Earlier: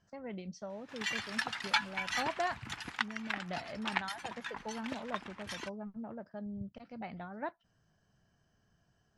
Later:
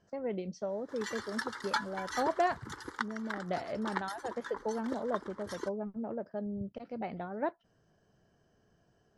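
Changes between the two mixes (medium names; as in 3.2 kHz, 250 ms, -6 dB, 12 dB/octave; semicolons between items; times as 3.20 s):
background: add static phaser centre 690 Hz, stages 6; master: add peaking EQ 430 Hz +11 dB 1.5 oct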